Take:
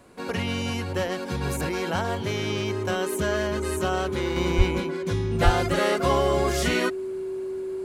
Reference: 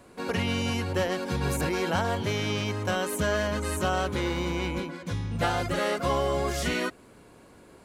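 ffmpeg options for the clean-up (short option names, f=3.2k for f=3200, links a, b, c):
-filter_complex "[0:a]bandreject=f=380:w=30,asplit=3[a][b][c];[a]afade=t=out:st=4.57:d=0.02[d];[b]highpass=f=140:w=0.5412,highpass=f=140:w=1.3066,afade=t=in:st=4.57:d=0.02,afade=t=out:st=4.69:d=0.02[e];[c]afade=t=in:st=4.69:d=0.02[f];[d][e][f]amix=inputs=3:normalize=0,asplit=3[g][h][i];[g]afade=t=out:st=5.44:d=0.02[j];[h]highpass=f=140:w=0.5412,highpass=f=140:w=1.3066,afade=t=in:st=5.44:d=0.02,afade=t=out:st=5.56:d=0.02[k];[i]afade=t=in:st=5.56:d=0.02[l];[j][k][l]amix=inputs=3:normalize=0,asetnsamples=n=441:p=0,asendcmd='4.36 volume volume -4dB',volume=0dB"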